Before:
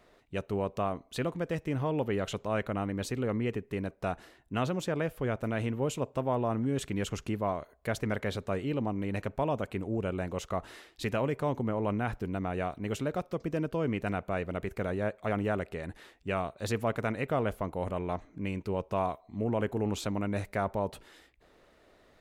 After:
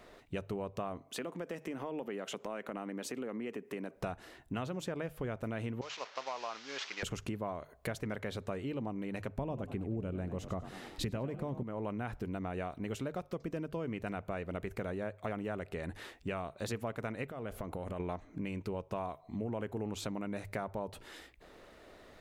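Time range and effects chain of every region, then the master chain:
0:01.00–0:03.96: high-pass filter 200 Hz 24 dB per octave + parametric band 4,000 Hz −5 dB 0.34 octaves + downward compressor 2 to 1, threshold −46 dBFS
0:05.81–0:07.03: linear delta modulator 32 kbit/s, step −40 dBFS + high-pass filter 1,100 Hz + downward expander −47 dBFS
0:09.38–0:11.63: low-shelf EQ 390 Hz +11.5 dB + echo with shifted repeats 97 ms, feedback 43%, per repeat +49 Hz, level −14 dB
0:17.27–0:18.00: downward compressor, threshold −39 dBFS + parametric band 950 Hz −3 dB 0.21 octaves
whole clip: downward compressor 6 to 1, threshold −41 dBFS; mains-hum notches 50/100/150 Hz; level +5.5 dB

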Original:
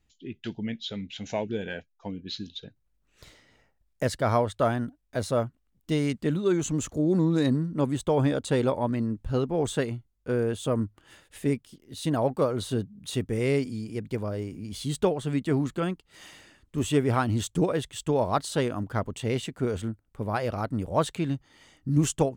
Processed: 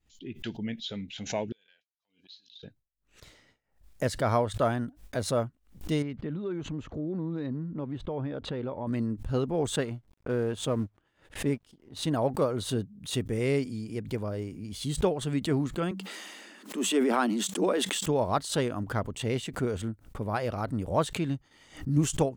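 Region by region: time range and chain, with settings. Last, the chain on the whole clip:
0:01.52–0:02.63: downward compressor 8 to 1, threshold −43 dBFS + resonant band-pass 4,300 Hz, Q 1.9
0:06.02–0:08.87: downward compressor 2.5 to 1, threshold −30 dBFS + high-frequency loss of the air 320 metres
0:09.76–0:12.08: mu-law and A-law mismatch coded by A + high-shelf EQ 7,800 Hz −9.5 dB + one half of a high-frequency compander decoder only
0:15.91–0:18.06: Chebyshev high-pass filter 190 Hz, order 8 + level that may fall only so fast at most 24 dB per second
whole clip: noise gate with hold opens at −49 dBFS; background raised ahead of every attack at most 150 dB per second; level −2 dB

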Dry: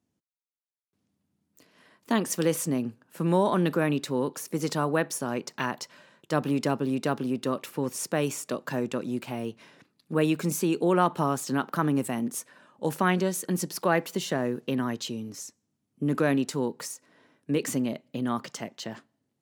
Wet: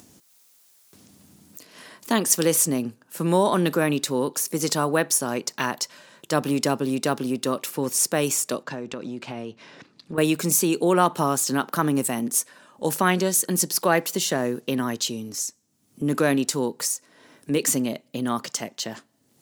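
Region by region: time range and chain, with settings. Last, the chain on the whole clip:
0:08.63–0:10.18: downward compressor 5 to 1, threshold −31 dBFS + high-frequency loss of the air 120 metres
whole clip: bass and treble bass −3 dB, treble +9 dB; upward compression, threshold −39 dBFS; level +4 dB

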